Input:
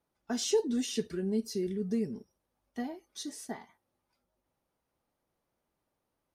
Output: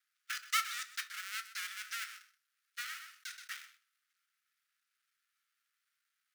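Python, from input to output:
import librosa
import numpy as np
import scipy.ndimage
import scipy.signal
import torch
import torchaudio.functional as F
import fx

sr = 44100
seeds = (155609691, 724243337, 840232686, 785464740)

y = fx.dead_time(x, sr, dead_ms=0.29)
y = scipy.signal.sosfilt(scipy.signal.cheby1(6, 1.0, 1300.0, 'highpass', fs=sr, output='sos'), y)
y = y + 10.0 ** (-15.5 / 20.0) * np.pad(y, (int(127 * sr / 1000.0), 0))[:len(y)]
y = fx.room_shoebox(y, sr, seeds[0], volume_m3=180.0, walls='furnished', distance_m=0.54)
y = fx.env_flatten(y, sr, amount_pct=50, at=(2.81, 3.54))
y = y * librosa.db_to_amplitude(7.0)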